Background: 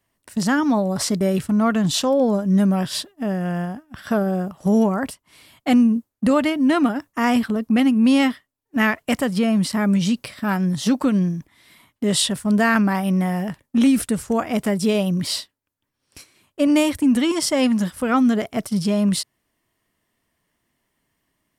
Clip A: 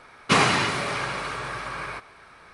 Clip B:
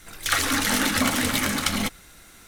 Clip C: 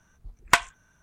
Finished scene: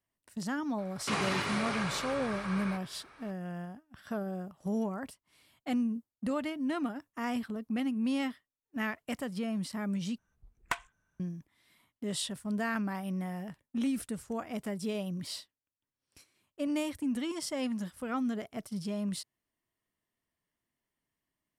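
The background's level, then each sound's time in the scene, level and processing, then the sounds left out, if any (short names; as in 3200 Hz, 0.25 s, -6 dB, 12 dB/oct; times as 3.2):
background -15.5 dB
0.78 add A -7 dB + limiter -16 dBFS
10.18 replace with C -14 dB + bell 5300 Hz -5 dB 1.2 oct
not used: B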